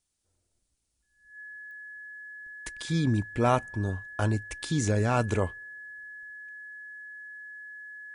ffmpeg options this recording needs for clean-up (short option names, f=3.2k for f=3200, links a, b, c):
-af "adeclick=t=4,bandreject=f=1.7k:w=30,agate=range=-21dB:threshold=-67dB"